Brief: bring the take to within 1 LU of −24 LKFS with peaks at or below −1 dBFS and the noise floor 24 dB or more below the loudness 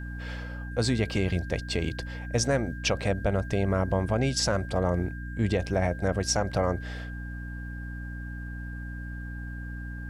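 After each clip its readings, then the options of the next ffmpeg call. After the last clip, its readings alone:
mains hum 60 Hz; hum harmonics up to 300 Hz; level of the hum −34 dBFS; interfering tone 1,600 Hz; level of the tone −43 dBFS; integrated loudness −29.5 LKFS; sample peak −14.0 dBFS; target loudness −24.0 LKFS
→ -af "bandreject=frequency=60:width_type=h:width=6,bandreject=frequency=120:width_type=h:width=6,bandreject=frequency=180:width_type=h:width=6,bandreject=frequency=240:width_type=h:width=6,bandreject=frequency=300:width_type=h:width=6"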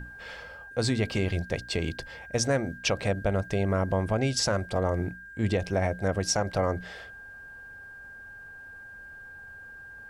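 mains hum none found; interfering tone 1,600 Hz; level of the tone −43 dBFS
→ -af "bandreject=frequency=1600:width=30"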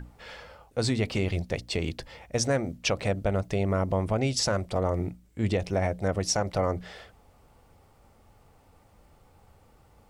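interfering tone none found; integrated loudness −28.5 LKFS; sample peak −12.5 dBFS; target loudness −24.0 LKFS
→ -af "volume=4.5dB"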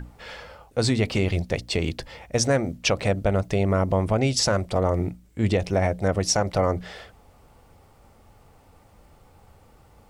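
integrated loudness −24.0 LKFS; sample peak −8.0 dBFS; background noise floor −55 dBFS

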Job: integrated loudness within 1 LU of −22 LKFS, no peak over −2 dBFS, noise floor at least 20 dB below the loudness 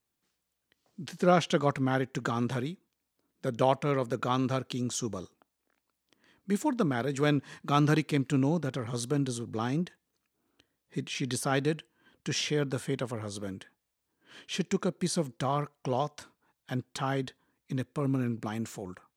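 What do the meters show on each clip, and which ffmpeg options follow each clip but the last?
integrated loudness −31.0 LKFS; sample peak −9.5 dBFS; target loudness −22.0 LKFS
→ -af "volume=9dB,alimiter=limit=-2dB:level=0:latency=1"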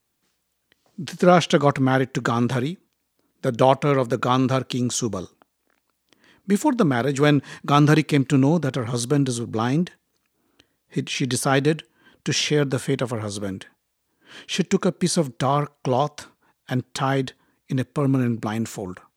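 integrated loudness −22.0 LKFS; sample peak −2.0 dBFS; background noise floor −74 dBFS

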